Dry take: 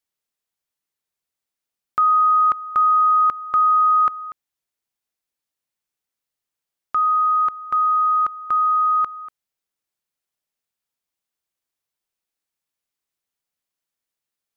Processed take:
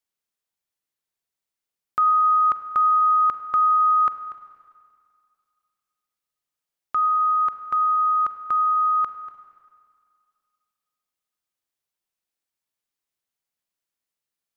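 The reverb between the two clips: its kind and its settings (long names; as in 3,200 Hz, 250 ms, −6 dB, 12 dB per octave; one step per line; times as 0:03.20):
four-comb reverb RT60 2.2 s, combs from 33 ms, DRR 10 dB
level −2.5 dB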